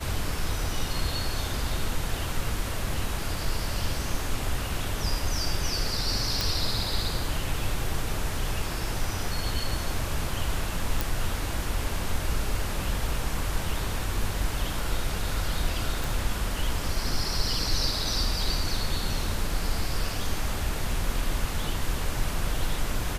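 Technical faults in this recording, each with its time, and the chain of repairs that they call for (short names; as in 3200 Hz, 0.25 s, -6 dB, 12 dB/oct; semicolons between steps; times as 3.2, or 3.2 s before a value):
6.41 pop
11.01 pop
16.04 pop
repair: de-click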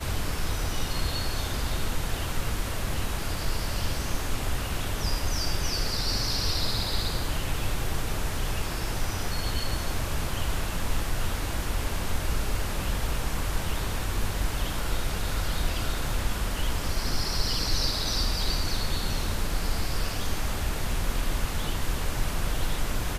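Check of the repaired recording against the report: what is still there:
none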